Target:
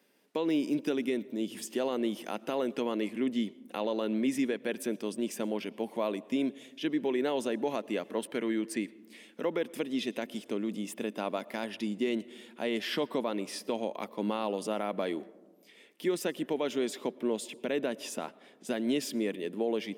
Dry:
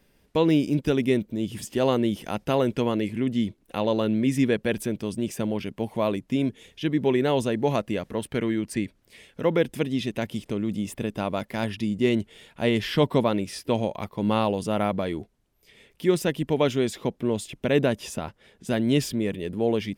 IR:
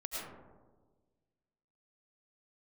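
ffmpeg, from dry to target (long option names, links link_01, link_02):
-filter_complex "[0:a]highpass=frequency=230:width=0.5412,highpass=frequency=230:width=1.3066,alimiter=limit=-17.5dB:level=0:latency=1:release=166,asplit=2[link_01][link_02];[1:a]atrim=start_sample=2205,asetrate=41454,aresample=44100[link_03];[link_02][link_03]afir=irnorm=-1:irlink=0,volume=-21.5dB[link_04];[link_01][link_04]amix=inputs=2:normalize=0,volume=-3.5dB"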